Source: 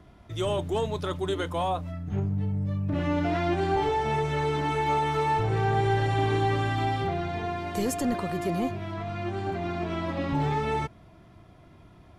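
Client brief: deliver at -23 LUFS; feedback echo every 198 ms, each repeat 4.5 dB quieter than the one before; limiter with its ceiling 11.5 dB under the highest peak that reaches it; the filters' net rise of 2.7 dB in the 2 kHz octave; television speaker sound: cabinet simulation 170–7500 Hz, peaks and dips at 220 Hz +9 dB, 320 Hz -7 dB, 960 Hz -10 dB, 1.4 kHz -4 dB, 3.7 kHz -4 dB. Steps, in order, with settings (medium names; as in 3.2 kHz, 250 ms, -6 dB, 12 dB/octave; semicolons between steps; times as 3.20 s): peaking EQ 2 kHz +5 dB; peak limiter -26 dBFS; cabinet simulation 170–7500 Hz, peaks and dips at 220 Hz +9 dB, 320 Hz -7 dB, 960 Hz -10 dB, 1.4 kHz -4 dB, 3.7 kHz -4 dB; feedback delay 198 ms, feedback 60%, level -4.5 dB; trim +11.5 dB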